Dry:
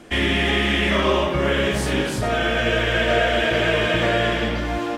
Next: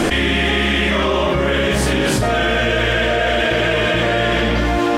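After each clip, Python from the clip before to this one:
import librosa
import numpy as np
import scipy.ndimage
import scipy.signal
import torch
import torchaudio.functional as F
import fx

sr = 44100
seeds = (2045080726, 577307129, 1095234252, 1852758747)

y = fx.env_flatten(x, sr, amount_pct=100)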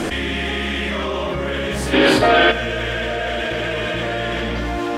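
y = fx.cheby_harmonics(x, sr, harmonics=(5,), levels_db=(-27,), full_scale_db=-4.0)
y = fx.spec_box(y, sr, start_s=1.93, length_s=0.58, low_hz=250.0, high_hz=5000.0, gain_db=11)
y = F.gain(torch.from_numpy(y), -7.0).numpy()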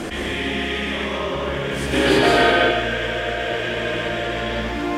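y = fx.rev_plate(x, sr, seeds[0], rt60_s=1.2, hf_ratio=0.95, predelay_ms=115, drr_db=-2.5)
y = F.gain(torch.from_numpy(y), -5.5).numpy()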